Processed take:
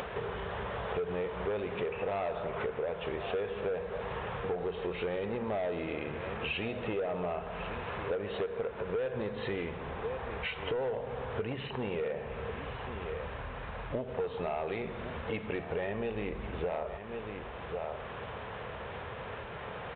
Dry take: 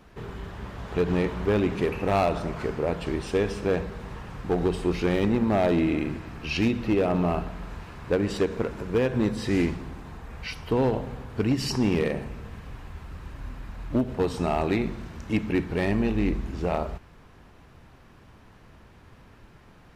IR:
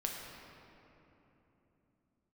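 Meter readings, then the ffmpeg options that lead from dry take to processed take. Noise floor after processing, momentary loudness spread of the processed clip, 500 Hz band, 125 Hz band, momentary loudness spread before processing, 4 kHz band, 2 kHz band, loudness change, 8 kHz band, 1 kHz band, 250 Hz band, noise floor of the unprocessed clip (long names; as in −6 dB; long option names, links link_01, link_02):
−42 dBFS, 7 LU, −6.0 dB, −11.5 dB, 16 LU, −6.0 dB, −4.5 dB, −10.0 dB, below −30 dB, −5.5 dB, −15.0 dB, −52 dBFS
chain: -filter_complex "[0:a]asplit=2[link_01][link_02];[link_02]aecho=0:1:1095:0.0944[link_03];[link_01][link_03]amix=inputs=2:normalize=0,acompressor=mode=upward:threshold=-29dB:ratio=2.5,highpass=60,lowshelf=frequency=380:width_type=q:width=3:gain=-6.5,asoftclip=type=tanh:threshold=-19.5dB,acompressor=threshold=-35dB:ratio=6,aresample=8000,aresample=44100,volume=3dB"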